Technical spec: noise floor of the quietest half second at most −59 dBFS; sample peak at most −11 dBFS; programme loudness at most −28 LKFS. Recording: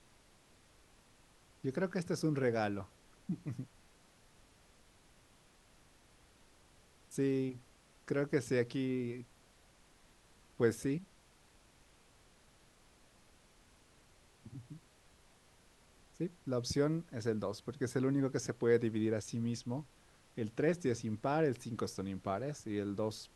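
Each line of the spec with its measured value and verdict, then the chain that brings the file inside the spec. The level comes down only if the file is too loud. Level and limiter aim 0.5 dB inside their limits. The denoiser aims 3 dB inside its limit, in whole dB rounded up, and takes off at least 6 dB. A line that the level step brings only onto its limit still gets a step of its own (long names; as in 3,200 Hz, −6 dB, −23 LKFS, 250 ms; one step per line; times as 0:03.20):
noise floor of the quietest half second −65 dBFS: in spec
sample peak −17.0 dBFS: in spec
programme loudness −36.5 LKFS: in spec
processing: no processing needed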